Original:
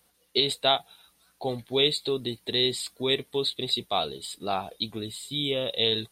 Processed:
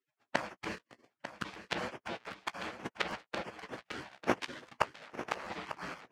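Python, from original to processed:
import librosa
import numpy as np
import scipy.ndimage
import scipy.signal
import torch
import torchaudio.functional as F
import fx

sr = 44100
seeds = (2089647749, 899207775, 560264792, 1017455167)

y = fx.halfwave_hold(x, sr)
y = fx.spec_gate(y, sr, threshold_db=-25, keep='weak')
y = fx.peak_eq(y, sr, hz=450.0, db=6.5, octaves=2.2)
y = fx.hpss(y, sr, part='harmonic', gain_db=-7)
y = fx.low_shelf(y, sr, hz=320.0, db=8.0)
y = fx.leveller(y, sr, passes=3)
y = fx.gate_flip(y, sr, shuts_db=-19.0, range_db=-27)
y = fx.bandpass_edges(y, sr, low_hz=140.0, high_hz=2100.0)
y = fx.doubler(y, sr, ms=16.0, db=-13.5)
y = y + 10.0 ** (-11.5 / 20.0) * np.pad(y, (int(896 * sr / 1000.0), 0))[:len(y)]
y = fx.buffer_crackle(y, sr, first_s=0.76, period_s=0.78, block=512, kind='repeat')
y = y * librosa.db_to_amplitude(14.5)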